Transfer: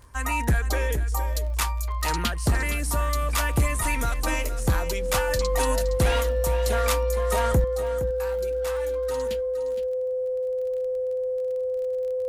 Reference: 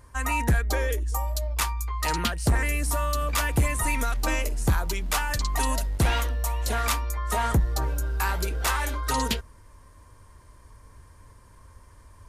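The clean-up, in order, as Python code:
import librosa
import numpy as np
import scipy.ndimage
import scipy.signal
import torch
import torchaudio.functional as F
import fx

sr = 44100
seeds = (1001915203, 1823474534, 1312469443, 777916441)

y = fx.fix_declick_ar(x, sr, threshold=6.5)
y = fx.notch(y, sr, hz=510.0, q=30.0)
y = fx.fix_echo_inverse(y, sr, delay_ms=465, level_db=-11.5)
y = fx.fix_level(y, sr, at_s=7.64, step_db=11.5)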